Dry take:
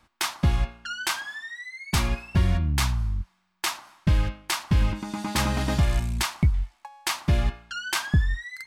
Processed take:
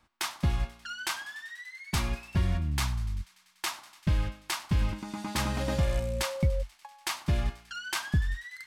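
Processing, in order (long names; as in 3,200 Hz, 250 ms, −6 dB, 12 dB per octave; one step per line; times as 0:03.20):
delay with a high-pass on its return 97 ms, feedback 81%, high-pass 1,600 Hz, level −20 dB
0:05.59–0:06.61: steady tone 540 Hz −28 dBFS
level −5.5 dB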